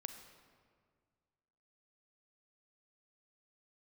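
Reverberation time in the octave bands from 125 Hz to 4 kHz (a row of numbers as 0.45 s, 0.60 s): 2.3 s, 2.1 s, 2.0 s, 1.8 s, 1.5 s, 1.2 s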